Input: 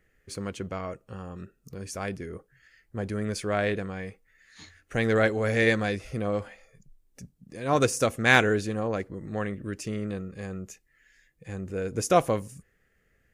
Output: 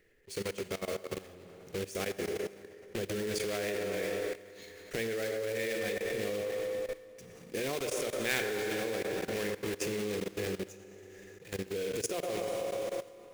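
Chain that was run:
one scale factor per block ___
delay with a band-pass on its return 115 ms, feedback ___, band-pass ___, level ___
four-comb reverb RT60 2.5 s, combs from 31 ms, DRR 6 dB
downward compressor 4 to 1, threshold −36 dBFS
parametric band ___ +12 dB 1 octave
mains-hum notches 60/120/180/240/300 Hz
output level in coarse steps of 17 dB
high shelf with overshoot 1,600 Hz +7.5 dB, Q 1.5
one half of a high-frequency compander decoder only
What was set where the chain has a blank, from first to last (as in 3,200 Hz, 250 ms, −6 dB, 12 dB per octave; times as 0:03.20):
3 bits, 60%, 770 Hz, −6 dB, 420 Hz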